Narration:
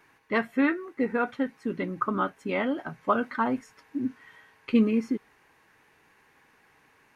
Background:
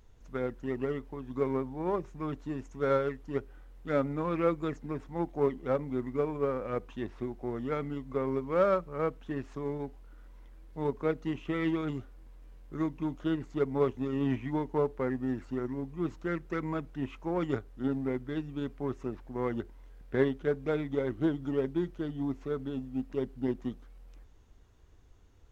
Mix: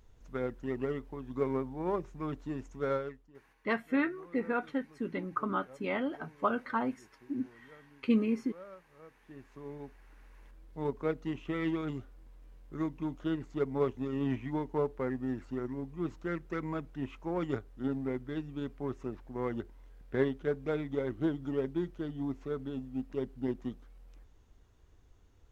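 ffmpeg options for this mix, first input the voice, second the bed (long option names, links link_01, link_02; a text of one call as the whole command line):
ffmpeg -i stem1.wav -i stem2.wav -filter_complex "[0:a]adelay=3350,volume=-5.5dB[link_01];[1:a]volume=19.5dB,afade=type=out:start_time=2.71:duration=0.61:silence=0.0794328,afade=type=in:start_time=9.1:duration=1.49:silence=0.0891251[link_02];[link_01][link_02]amix=inputs=2:normalize=0" out.wav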